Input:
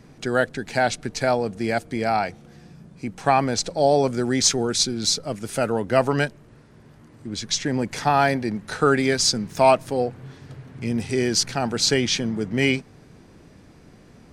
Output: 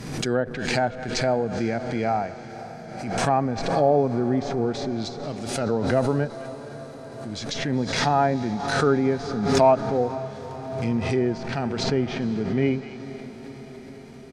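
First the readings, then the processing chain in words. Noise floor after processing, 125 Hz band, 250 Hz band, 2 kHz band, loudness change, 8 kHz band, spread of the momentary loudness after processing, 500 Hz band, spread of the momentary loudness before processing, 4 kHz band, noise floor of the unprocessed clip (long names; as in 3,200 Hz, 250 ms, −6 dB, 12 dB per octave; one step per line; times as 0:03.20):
−40 dBFS, +1.5 dB, +0.5 dB, −4.5 dB, −2.0 dB, −12.0 dB, 17 LU, −0.5 dB, 10 LU, −8.0 dB, −50 dBFS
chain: far-end echo of a speakerphone 210 ms, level −21 dB
treble cut that deepens with the level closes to 1,100 Hz, closed at −17.5 dBFS
high-shelf EQ 3,100 Hz +6.5 dB
on a send: feedback delay with all-pass diffusion 496 ms, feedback 71%, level −15 dB
on the sum: harmonic and percussive parts rebalanced percussive −8 dB
background raised ahead of every attack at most 46 dB per second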